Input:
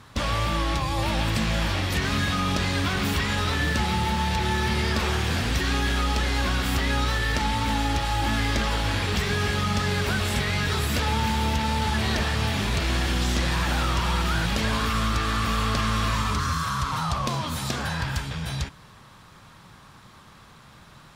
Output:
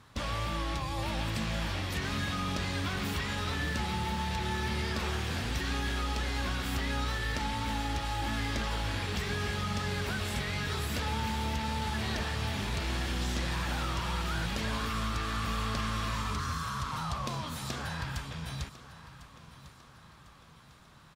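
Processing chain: feedback delay 1050 ms, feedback 46%, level -16 dB; trim -8.5 dB

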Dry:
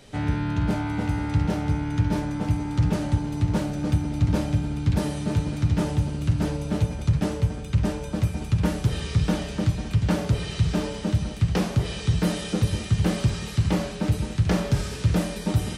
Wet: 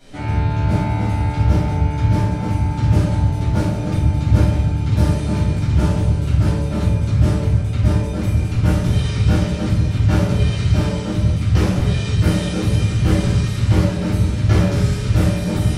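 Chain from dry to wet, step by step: simulated room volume 160 m³, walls mixed, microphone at 3.1 m; trim -5.5 dB

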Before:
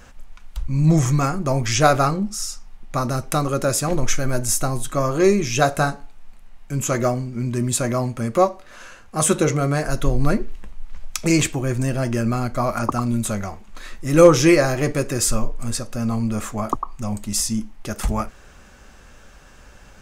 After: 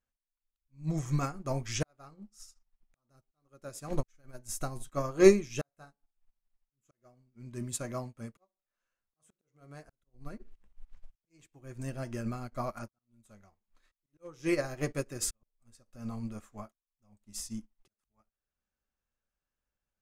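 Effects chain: slow attack 642 ms; upward expansion 2.5:1, over -40 dBFS; trim -1.5 dB

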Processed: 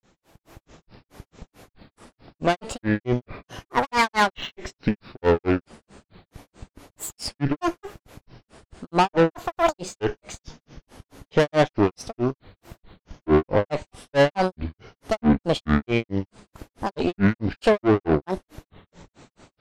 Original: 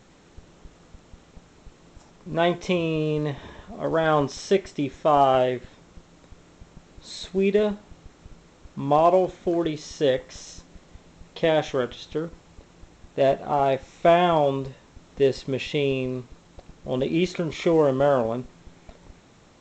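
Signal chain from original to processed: valve stage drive 23 dB, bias 0.75; level rider gain up to 11.5 dB; granulator 175 ms, grains 4.6 per s, pitch spread up and down by 12 st

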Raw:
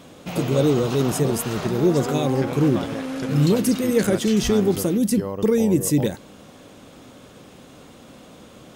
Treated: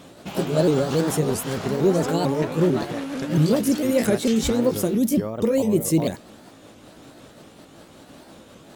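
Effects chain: sawtooth pitch modulation +3.5 st, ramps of 225 ms; warped record 33 1/3 rpm, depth 160 cents

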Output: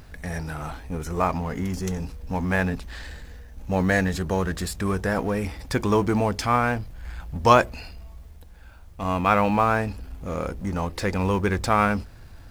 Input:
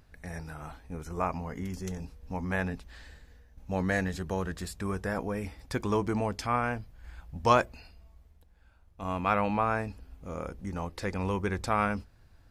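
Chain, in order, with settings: companding laws mixed up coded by mu; trim +6.5 dB

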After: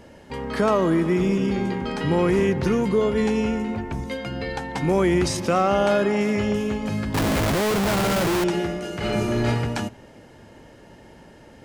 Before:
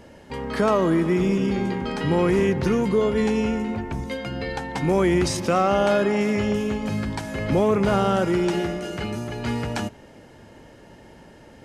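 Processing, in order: 7.14–8.44 s: Schmitt trigger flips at -33 dBFS; 8.98–9.46 s: reverb throw, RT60 0.88 s, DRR -6 dB

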